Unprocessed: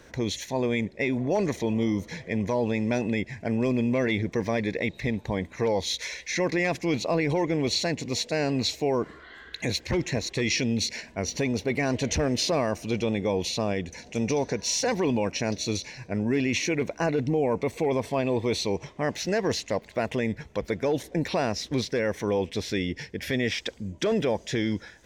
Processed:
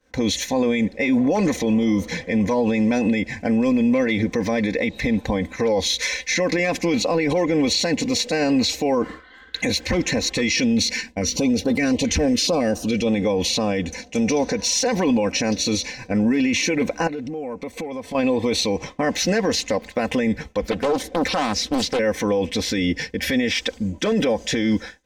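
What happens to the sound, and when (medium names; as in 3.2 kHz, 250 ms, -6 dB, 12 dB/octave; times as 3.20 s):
10.94–13.07 s: step-sequenced notch 7.2 Hz 620–2200 Hz
17.07–18.15 s: compression 20:1, threshold -35 dBFS
20.71–21.99 s: loudspeaker Doppler distortion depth 0.87 ms
whole clip: expander -38 dBFS; comb 3.9 ms, depth 66%; peak limiter -21 dBFS; trim +9 dB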